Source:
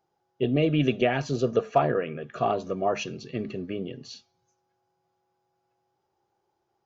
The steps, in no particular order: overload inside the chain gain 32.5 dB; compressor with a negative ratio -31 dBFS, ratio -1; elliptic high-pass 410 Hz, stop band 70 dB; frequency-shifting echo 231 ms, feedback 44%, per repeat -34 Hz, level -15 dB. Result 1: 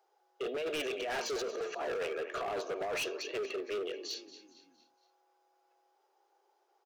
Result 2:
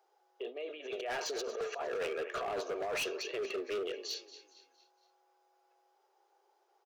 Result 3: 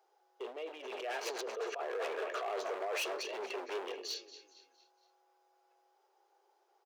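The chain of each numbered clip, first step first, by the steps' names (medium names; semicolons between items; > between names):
elliptic high-pass > compressor with a negative ratio > frequency-shifting echo > overload inside the chain; compressor with a negative ratio > frequency-shifting echo > elliptic high-pass > overload inside the chain; frequency-shifting echo > compressor with a negative ratio > overload inside the chain > elliptic high-pass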